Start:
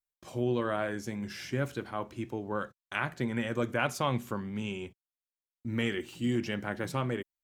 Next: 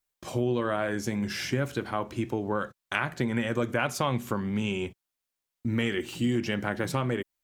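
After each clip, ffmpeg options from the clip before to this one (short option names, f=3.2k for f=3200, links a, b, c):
-af "acompressor=threshold=-35dB:ratio=2.5,volume=9dB"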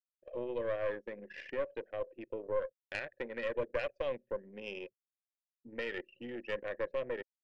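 -filter_complex "[0:a]asplit=3[a][b][c];[a]bandpass=f=530:t=q:w=8,volume=0dB[d];[b]bandpass=f=1.84k:t=q:w=8,volume=-6dB[e];[c]bandpass=f=2.48k:t=q:w=8,volume=-9dB[f];[d][e][f]amix=inputs=3:normalize=0,aeval=exprs='(tanh(31.6*val(0)+0.6)-tanh(0.6))/31.6':c=same,anlmdn=0.00631,volume=5dB"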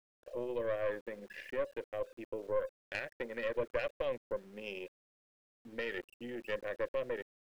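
-af "aeval=exprs='val(0)*gte(abs(val(0)),0.00126)':c=same"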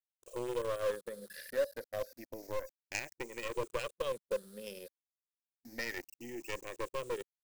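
-filter_complex "[0:a]afftfilt=real='re*pow(10,12/40*sin(2*PI*(0.69*log(max(b,1)*sr/1024/100)/log(2)-(0.3)*(pts-256)/sr)))':imag='im*pow(10,12/40*sin(2*PI*(0.69*log(max(b,1)*sr/1024/100)/log(2)-(0.3)*(pts-256)/sr)))':win_size=1024:overlap=0.75,aexciter=amount=5.7:drive=6.1:freq=4.3k,asplit=2[a][b];[b]acrusher=bits=4:mix=0:aa=0.000001,volume=-10dB[c];[a][c]amix=inputs=2:normalize=0,volume=-4dB"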